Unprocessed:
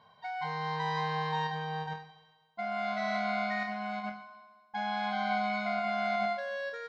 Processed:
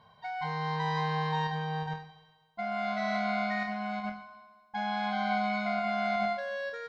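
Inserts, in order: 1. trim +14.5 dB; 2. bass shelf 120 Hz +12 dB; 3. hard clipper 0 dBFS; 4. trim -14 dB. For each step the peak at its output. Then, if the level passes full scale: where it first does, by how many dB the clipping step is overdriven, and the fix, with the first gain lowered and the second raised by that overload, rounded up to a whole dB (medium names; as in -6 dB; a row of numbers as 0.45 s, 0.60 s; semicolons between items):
-6.0 dBFS, -4.5 dBFS, -4.5 dBFS, -18.5 dBFS; nothing clips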